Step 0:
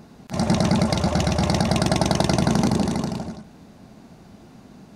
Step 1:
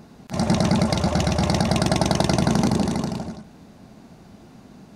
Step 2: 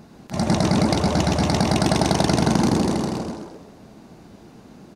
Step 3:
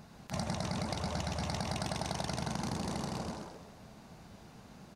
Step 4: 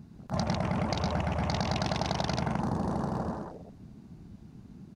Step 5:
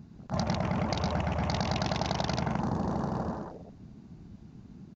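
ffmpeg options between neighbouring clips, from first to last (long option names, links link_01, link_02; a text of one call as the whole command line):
ffmpeg -i in.wav -af anull out.wav
ffmpeg -i in.wav -filter_complex "[0:a]asplit=6[link_01][link_02][link_03][link_04][link_05][link_06];[link_02]adelay=130,afreqshift=110,volume=-6.5dB[link_07];[link_03]adelay=260,afreqshift=220,volume=-14.7dB[link_08];[link_04]adelay=390,afreqshift=330,volume=-22.9dB[link_09];[link_05]adelay=520,afreqshift=440,volume=-31dB[link_10];[link_06]adelay=650,afreqshift=550,volume=-39.2dB[link_11];[link_01][link_07][link_08][link_09][link_10][link_11]amix=inputs=6:normalize=0" out.wav
ffmpeg -i in.wav -af "equalizer=frequency=320:width_type=o:width=1.2:gain=-10.5,acompressor=threshold=-29dB:ratio=6,volume=-4dB" out.wav
ffmpeg -i in.wav -af "afwtdn=0.00562,volume=6.5dB" out.wav
ffmpeg -i in.wav -af "aresample=16000,aresample=44100" out.wav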